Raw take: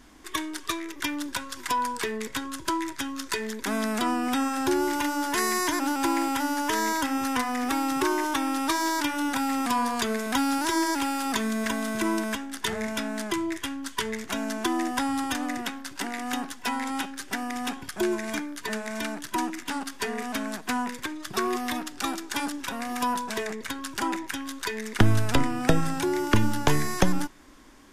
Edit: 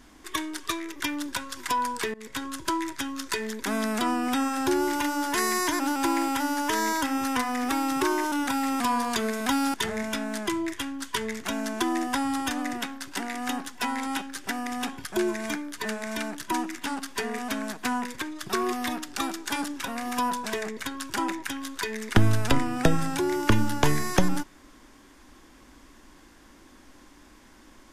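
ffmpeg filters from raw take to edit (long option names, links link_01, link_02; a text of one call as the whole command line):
ffmpeg -i in.wav -filter_complex "[0:a]asplit=4[link_01][link_02][link_03][link_04];[link_01]atrim=end=2.14,asetpts=PTS-STARTPTS,afade=type=out:start_time=2.136:duration=0.004:curve=hsin:silence=0.0794328[link_05];[link_02]atrim=start=2.14:end=8.322,asetpts=PTS-STARTPTS,afade=type=in:duration=0.29:silence=0.0794328[link_06];[link_03]atrim=start=9.178:end=10.602[link_07];[link_04]atrim=start=12.578[link_08];[link_05][link_06]concat=n=2:v=0:a=1[link_09];[link_09][link_07]acrossfade=duration=0.004:curve1=hsin:curve2=hsin[link_10];[link_10][link_08]acrossfade=duration=0.004:curve1=hsin:curve2=hsin" out.wav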